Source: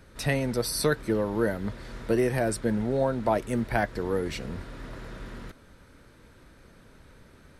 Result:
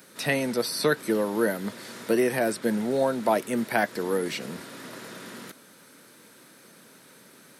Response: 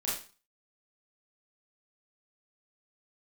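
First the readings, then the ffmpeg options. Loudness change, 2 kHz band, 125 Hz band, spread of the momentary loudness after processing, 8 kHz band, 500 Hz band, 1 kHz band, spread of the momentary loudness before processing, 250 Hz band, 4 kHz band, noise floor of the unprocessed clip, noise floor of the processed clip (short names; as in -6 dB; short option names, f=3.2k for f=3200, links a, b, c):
+1.5 dB, +3.5 dB, -7.0 dB, 16 LU, +0.5 dB, +1.5 dB, +2.0 dB, 16 LU, +1.0 dB, +3.5 dB, -55 dBFS, -53 dBFS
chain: -filter_complex "[0:a]highpass=f=170:w=0.5412,highpass=f=170:w=1.3066,acrossover=split=4000[a][b];[b]acompressor=threshold=-51dB:ratio=4:attack=1:release=60[c];[a][c]amix=inputs=2:normalize=0,aemphasis=mode=production:type=75kf,volume=1.5dB"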